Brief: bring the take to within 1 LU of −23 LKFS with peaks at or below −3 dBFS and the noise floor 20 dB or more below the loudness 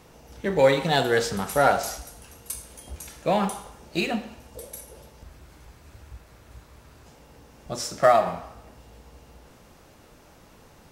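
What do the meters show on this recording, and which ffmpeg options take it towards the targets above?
integrated loudness −24.0 LKFS; sample peak −4.5 dBFS; target loudness −23.0 LKFS
→ -af "volume=1dB"

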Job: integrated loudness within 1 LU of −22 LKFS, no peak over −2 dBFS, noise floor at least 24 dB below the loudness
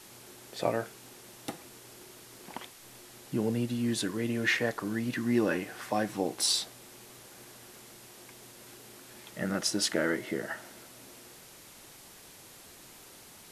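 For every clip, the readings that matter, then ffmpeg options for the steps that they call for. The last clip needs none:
background noise floor −52 dBFS; target noise floor −55 dBFS; integrated loudness −31.0 LKFS; sample peak −13.5 dBFS; target loudness −22.0 LKFS
→ -af "afftdn=noise_reduction=6:noise_floor=-52"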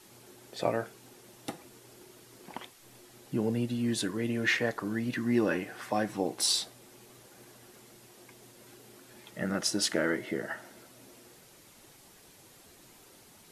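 background noise floor −57 dBFS; integrated loudness −31.0 LKFS; sample peak −13.5 dBFS; target loudness −22.0 LKFS
→ -af "volume=9dB"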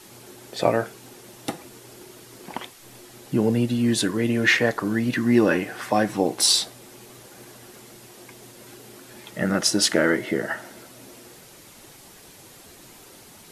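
integrated loudness −22.0 LKFS; sample peak −4.5 dBFS; background noise floor −48 dBFS

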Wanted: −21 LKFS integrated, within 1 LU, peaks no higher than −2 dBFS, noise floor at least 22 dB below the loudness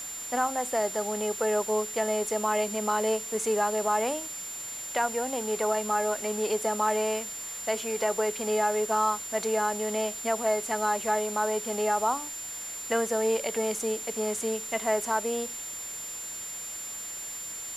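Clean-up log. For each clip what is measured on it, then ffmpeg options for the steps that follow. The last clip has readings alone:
interfering tone 7,200 Hz; level of the tone −36 dBFS; background noise floor −38 dBFS; target noise floor −51 dBFS; integrated loudness −28.5 LKFS; sample peak −14.5 dBFS; target loudness −21.0 LKFS
→ -af "bandreject=frequency=7200:width=30"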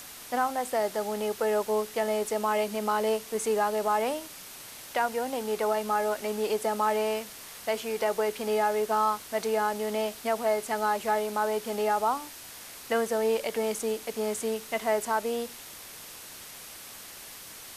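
interfering tone none found; background noise floor −45 dBFS; target noise floor −51 dBFS
→ -af "afftdn=noise_reduction=6:noise_floor=-45"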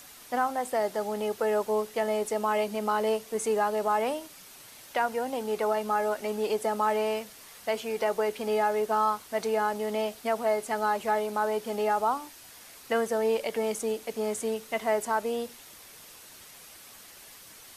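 background noise floor −50 dBFS; target noise floor −51 dBFS
→ -af "afftdn=noise_reduction=6:noise_floor=-50"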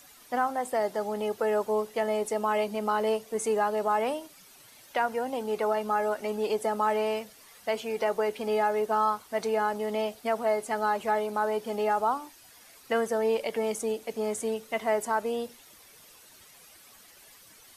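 background noise floor −54 dBFS; integrated loudness −29.0 LKFS; sample peak −15.5 dBFS; target loudness −21.0 LKFS
→ -af "volume=8dB"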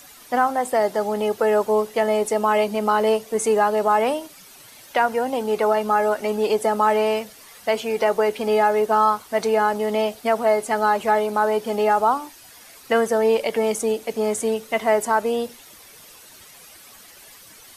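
integrated loudness −21.0 LKFS; sample peak −7.5 dBFS; background noise floor −46 dBFS

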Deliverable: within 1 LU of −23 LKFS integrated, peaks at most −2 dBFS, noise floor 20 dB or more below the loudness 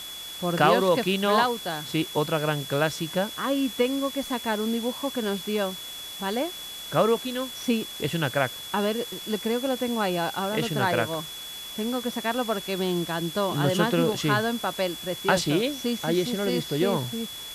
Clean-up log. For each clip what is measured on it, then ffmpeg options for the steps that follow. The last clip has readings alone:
interfering tone 3,400 Hz; level of the tone −37 dBFS; background noise floor −38 dBFS; target noise floor −46 dBFS; integrated loudness −26.0 LKFS; sample peak −8.0 dBFS; target loudness −23.0 LKFS
→ -af "bandreject=frequency=3400:width=30"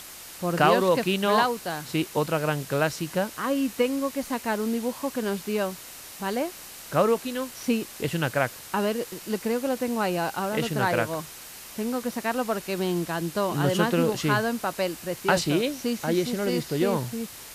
interfering tone none found; background noise floor −43 dBFS; target noise floor −47 dBFS
→ -af "afftdn=noise_reduction=6:noise_floor=-43"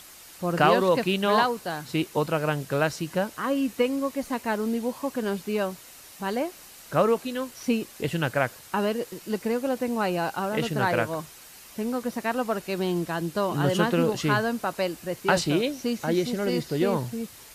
background noise floor −48 dBFS; integrated loudness −26.5 LKFS; sample peak −8.0 dBFS; target loudness −23.0 LKFS
→ -af "volume=3.5dB"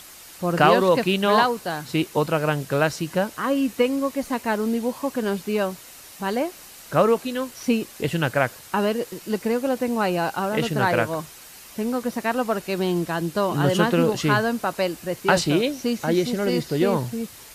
integrated loudness −23.0 LKFS; sample peak −4.5 dBFS; background noise floor −44 dBFS

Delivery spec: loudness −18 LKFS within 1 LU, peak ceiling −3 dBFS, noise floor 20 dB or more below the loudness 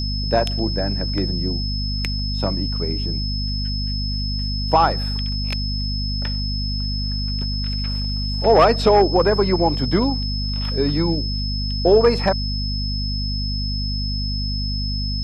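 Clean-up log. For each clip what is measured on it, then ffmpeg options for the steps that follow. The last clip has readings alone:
mains hum 50 Hz; hum harmonics up to 250 Hz; level of the hum −22 dBFS; interfering tone 5,200 Hz; level of the tone −27 dBFS; integrated loudness −21.0 LKFS; sample peak −3.0 dBFS; target loudness −18.0 LKFS
→ -af "bandreject=frequency=50:width_type=h:width=4,bandreject=frequency=100:width_type=h:width=4,bandreject=frequency=150:width_type=h:width=4,bandreject=frequency=200:width_type=h:width=4,bandreject=frequency=250:width_type=h:width=4"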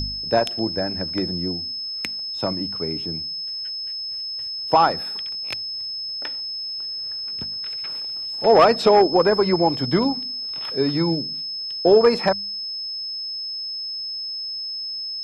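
mains hum none found; interfering tone 5,200 Hz; level of the tone −27 dBFS
→ -af "bandreject=frequency=5200:width=30"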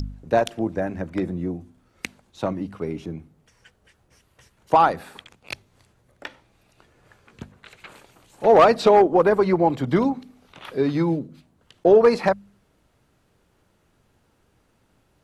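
interfering tone none found; integrated loudness −20.5 LKFS; sample peak −4.0 dBFS; target loudness −18.0 LKFS
→ -af "volume=2.5dB,alimiter=limit=-3dB:level=0:latency=1"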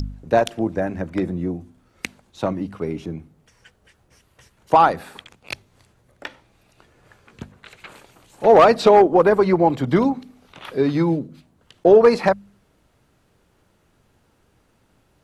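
integrated loudness −18.0 LKFS; sample peak −3.0 dBFS; background noise floor −62 dBFS

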